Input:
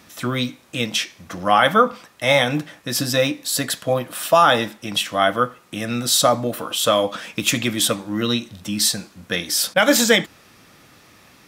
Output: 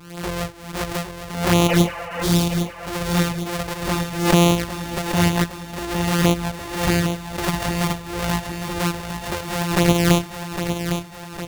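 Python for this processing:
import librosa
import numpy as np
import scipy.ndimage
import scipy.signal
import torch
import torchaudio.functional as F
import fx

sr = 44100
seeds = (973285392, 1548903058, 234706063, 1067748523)

y = np.r_[np.sort(x[:len(x) // 256 * 256].reshape(-1, 256), axis=1).ravel(), x[len(x) // 256 * 256:]]
y = fx.spec_repair(y, sr, seeds[0], start_s=1.71, length_s=0.97, low_hz=480.0, high_hz=3100.0, source='both')
y = fx.env_flanger(y, sr, rest_ms=6.8, full_db=-11.0)
y = fx.echo_feedback(y, sr, ms=808, feedback_pct=57, wet_db=-8)
y = fx.pre_swell(y, sr, db_per_s=79.0)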